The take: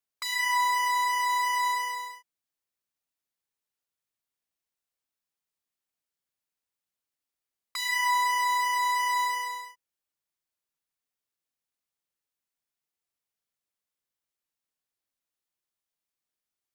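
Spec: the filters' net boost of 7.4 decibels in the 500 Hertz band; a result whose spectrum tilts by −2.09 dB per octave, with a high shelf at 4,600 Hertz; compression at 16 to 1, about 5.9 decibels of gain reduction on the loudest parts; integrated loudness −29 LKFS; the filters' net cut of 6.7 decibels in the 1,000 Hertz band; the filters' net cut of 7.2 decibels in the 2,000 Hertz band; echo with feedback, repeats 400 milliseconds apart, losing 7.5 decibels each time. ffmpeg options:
ffmpeg -i in.wav -af "equalizer=frequency=500:width_type=o:gain=9,equalizer=frequency=1000:width_type=o:gain=-7.5,equalizer=frequency=2000:width_type=o:gain=-7,highshelf=frequency=4600:gain=6,acompressor=threshold=-32dB:ratio=16,aecho=1:1:400|800|1200|1600|2000:0.422|0.177|0.0744|0.0312|0.0131,volume=6dB" out.wav

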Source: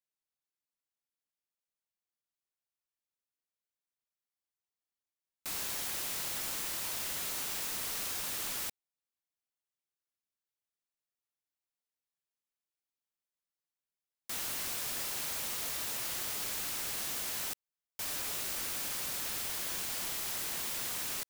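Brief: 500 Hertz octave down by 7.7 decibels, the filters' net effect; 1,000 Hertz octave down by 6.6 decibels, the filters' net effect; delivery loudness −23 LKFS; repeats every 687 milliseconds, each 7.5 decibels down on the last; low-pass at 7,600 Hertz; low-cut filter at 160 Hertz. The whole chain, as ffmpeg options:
ffmpeg -i in.wav -af "highpass=160,lowpass=7600,equalizer=frequency=500:width_type=o:gain=-8,equalizer=frequency=1000:width_type=o:gain=-6.5,aecho=1:1:687|1374|2061|2748|3435:0.422|0.177|0.0744|0.0312|0.0131,volume=16.5dB" out.wav

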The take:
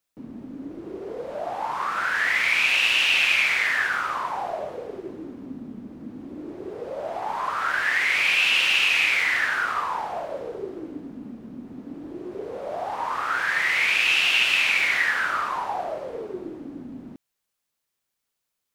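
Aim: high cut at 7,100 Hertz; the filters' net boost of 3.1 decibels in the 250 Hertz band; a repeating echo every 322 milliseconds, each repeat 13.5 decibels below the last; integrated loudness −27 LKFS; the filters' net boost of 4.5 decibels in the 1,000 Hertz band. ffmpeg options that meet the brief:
ffmpeg -i in.wav -af "lowpass=7100,equalizer=frequency=250:width_type=o:gain=3.5,equalizer=frequency=1000:width_type=o:gain=5.5,aecho=1:1:322|644:0.211|0.0444,volume=-7dB" out.wav

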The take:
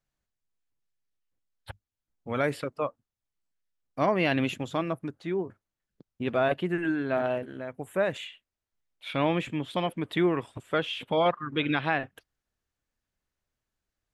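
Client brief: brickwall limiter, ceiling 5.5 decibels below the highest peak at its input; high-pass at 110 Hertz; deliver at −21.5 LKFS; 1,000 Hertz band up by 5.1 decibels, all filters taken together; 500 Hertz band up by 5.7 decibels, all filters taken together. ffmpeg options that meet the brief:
ffmpeg -i in.wav -af "highpass=110,equalizer=frequency=500:width_type=o:gain=6,equalizer=frequency=1000:width_type=o:gain=4.5,volume=5dB,alimiter=limit=-8dB:level=0:latency=1" out.wav

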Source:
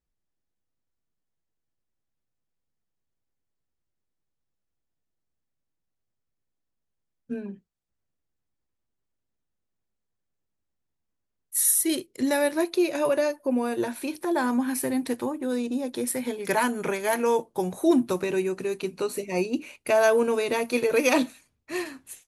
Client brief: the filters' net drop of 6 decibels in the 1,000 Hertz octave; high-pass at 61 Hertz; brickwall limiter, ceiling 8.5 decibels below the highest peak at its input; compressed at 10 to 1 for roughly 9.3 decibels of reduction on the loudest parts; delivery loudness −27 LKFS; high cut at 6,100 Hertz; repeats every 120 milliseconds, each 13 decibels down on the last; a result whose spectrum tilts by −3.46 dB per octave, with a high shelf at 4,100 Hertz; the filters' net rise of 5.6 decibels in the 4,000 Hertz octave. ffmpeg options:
ffmpeg -i in.wav -af "highpass=61,lowpass=6100,equalizer=frequency=1000:width_type=o:gain=-8.5,equalizer=frequency=4000:width_type=o:gain=3.5,highshelf=frequency=4100:gain=8,acompressor=threshold=-26dB:ratio=10,alimiter=limit=-23dB:level=0:latency=1,aecho=1:1:120|240|360:0.224|0.0493|0.0108,volume=5.5dB" out.wav

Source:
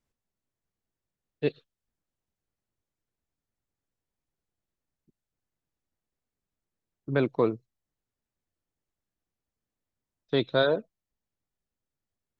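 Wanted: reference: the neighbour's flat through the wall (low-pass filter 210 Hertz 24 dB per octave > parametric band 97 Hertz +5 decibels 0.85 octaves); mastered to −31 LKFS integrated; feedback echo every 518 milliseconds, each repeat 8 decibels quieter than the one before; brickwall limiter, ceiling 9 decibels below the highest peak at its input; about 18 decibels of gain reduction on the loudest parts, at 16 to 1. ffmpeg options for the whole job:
ffmpeg -i in.wav -af "acompressor=threshold=-37dB:ratio=16,alimiter=level_in=9dB:limit=-24dB:level=0:latency=1,volume=-9dB,lowpass=frequency=210:width=0.5412,lowpass=frequency=210:width=1.3066,equalizer=frequency=97:width_type=o:width=0.85:gain=5,aecho=1:1:518|1036|1554|2072|2590:0.398|0.159|0.0637|0.0255|0.0102,volume=24.5dB" out.wav

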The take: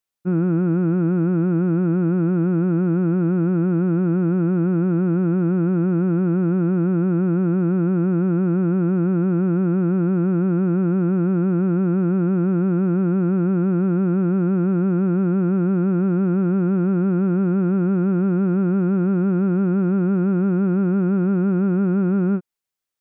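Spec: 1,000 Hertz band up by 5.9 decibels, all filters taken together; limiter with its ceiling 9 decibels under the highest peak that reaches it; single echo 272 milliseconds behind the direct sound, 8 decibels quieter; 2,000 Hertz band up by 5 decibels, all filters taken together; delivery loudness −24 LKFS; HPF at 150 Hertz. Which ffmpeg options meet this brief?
ffmpeg -i in.wav -af "highpass=150,equalizer=frequency=1000:width_type=o:gain=7.5,equalizer=frequency=2000:width_type=o:gain=3,alimiter=limit=-22dB:level=0:latency=1,aecho=1:1:272:0.398,volume=3.5dB" out.wav

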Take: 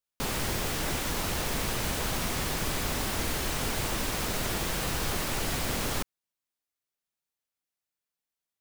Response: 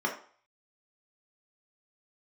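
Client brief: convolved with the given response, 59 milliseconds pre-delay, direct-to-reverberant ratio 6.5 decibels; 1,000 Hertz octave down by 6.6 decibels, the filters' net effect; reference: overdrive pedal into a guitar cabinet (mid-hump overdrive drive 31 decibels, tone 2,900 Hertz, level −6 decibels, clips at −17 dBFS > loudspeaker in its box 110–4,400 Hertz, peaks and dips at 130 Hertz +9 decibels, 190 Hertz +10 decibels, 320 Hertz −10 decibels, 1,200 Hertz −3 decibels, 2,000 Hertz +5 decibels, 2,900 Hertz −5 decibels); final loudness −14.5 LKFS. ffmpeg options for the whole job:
-filter_complex "[0:a]equalizer=frequency=1000:width_type=o:gain=-7.5,asplit=2[link_01][link_02];[1:a]atrim=start_sample=2205,adelay=59[link_03];[link_02][link_03]afir=irnorm=-1:irlink=0,volume=-15.5dB[link_04];[link_01][link_04]amix=inputs=2:normalize=0,asplit=2[link_05][link_06];[link_06]highpass=frequency=720:poles=1,volume=31dB,asoftclip=type=tanh:threshold=-17dB[link_07];[link_05][link_07]amix=inputs=2:normalize=0,lowpass=frequency=2900:poles=1,volume=-6dB,highpass=110,equalizer=frequency=130:width_type=q:width=4:gain=9,equalizer=frequency=190:width_type=q:width=4:gain=10,equalizer=frequency=320:width_type=q:width=4:gain=-10,equalizer=frequency=1200:width_type=q:width=4:gain=-3,equalizer=frequency=2000:width_type=q:width=4:gain=5,equalizer=frequency=2900:width_type=q:width=4:gain=-5,lowpass=frequency=4400:width=0.5412,lowpass=frequency=4400:width=1.3066,volume=12dB"

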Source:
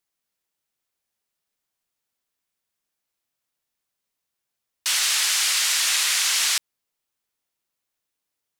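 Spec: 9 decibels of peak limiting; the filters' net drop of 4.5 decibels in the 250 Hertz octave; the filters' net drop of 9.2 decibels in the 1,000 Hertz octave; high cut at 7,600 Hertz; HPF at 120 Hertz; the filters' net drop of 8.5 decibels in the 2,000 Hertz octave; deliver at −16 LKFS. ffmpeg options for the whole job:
ffmpeg -i in.wav -af "highpass=120,lowpass=7600,equalizer=frequency=250:width_type=o:gain=-5.5,equalizer=frequency=1000:width_type=o:gain=-8.5,equalizer=frequency=2000:width_type=o:gain=-9,volume=12.5dB,alimiter=limit=-9dB:level=0:latency=1" out.wav

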